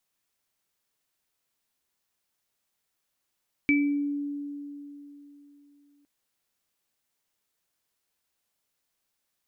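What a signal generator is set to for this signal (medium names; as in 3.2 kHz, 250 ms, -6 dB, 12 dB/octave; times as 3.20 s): sine partials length 2.36 s, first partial 287 Hz, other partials 2.31 kHz, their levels 0 dB, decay 3.38 s, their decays 0.44 s, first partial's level -19.5 dB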